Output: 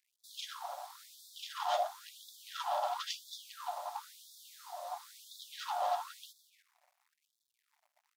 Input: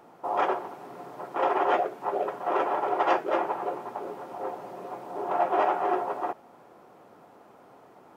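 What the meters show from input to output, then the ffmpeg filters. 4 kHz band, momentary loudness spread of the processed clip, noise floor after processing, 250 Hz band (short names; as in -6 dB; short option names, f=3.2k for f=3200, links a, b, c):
+4.0 dB, 18 LU, -84 dBFS, under -40 dB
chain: -filter_complex "[0:a]lowshelf=f=380:t=q:w=1.5:g=-8,agate=range=-8dB:threshold=-48dB:ratio=16:detection=peak,acrossover=split=140|3000[a][b][c];[b]acompressor=threshold=-26dB:ratio=2[d];[a][d][c]amix=inputs=3:normalize=0,asplit=2[e][f];[f]adelay=293,lowpass=f=1.1k:p=1,volume=-15.5dB,asplit=2[g][h];[h]adelay=293,lowpass=f=1.1k:p=1,volume=0.19[i];[e][g][i]amix=inputs=3:normalize=0,acrossover=split=120|560|1900[j][k][l][m];[l]asoftclip=type=tanh:threshold=-27dB[n];[j][k][n][m]amix=inputs=4:normalize=0,firequalizer=gain_entry='entry(720,0);entry(2400,-10);entry(3600,12)':delay=0.05:min_phase=1,aeval=exprs='sgn(val(0))*max(abs(val(0))-0.00133,0)':c=same,afftfilt=real='re*gte(b*sr/1024,540*pow(3400/540,0.5+0.5*sin(2*PI*0.98*pts/sr)))':imag='im*gte(b*sr/1024,540*pow(3400/540,0.5+0.5*sin(2*PI*0.98*pts/sr)))':win_size=1024:overlap=0.75,volume=-1.5dB"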